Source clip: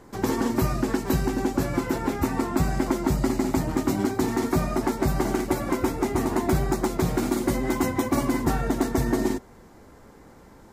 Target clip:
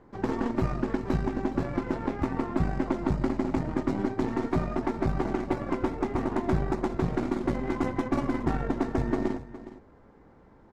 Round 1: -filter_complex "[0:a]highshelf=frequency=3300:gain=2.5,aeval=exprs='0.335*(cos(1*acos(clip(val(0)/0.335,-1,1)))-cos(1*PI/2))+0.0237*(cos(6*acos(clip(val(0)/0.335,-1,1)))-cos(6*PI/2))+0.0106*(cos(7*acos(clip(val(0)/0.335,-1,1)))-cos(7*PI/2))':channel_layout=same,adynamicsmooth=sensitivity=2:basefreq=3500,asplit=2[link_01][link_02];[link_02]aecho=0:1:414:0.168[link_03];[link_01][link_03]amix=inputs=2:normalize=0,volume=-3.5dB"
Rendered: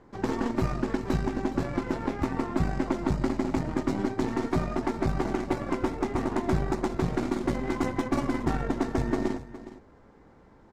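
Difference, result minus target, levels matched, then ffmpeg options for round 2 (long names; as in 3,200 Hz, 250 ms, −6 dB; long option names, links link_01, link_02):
8,000 Hz band +7.0 dB
-filter_complex "[0:a]highshelf=frequency=3300:gain=-5.5,aeval=exprs='0.335*(cos(1*acos(clip(val(0)/0.335,-1,1)))-cos(1*PI/2))+0.0237*(cos(6*acos(clip(val(0)/0.335,-1,1)))-cos(6*PI/2))+0.0106*(cos(7*acos(clip(val(0)/0.335,-1,1)))-cos(7*PI/2))':channel_layout=same,adynamicsmooth=sensitivity=2:basefreq=3500,asplit=2[link_01][link_02];[link_02]aecho=0:1:414:0.168[link_03];[link_01][link_03]amix=inputs=2:normalize=0,volume=-3.5dB"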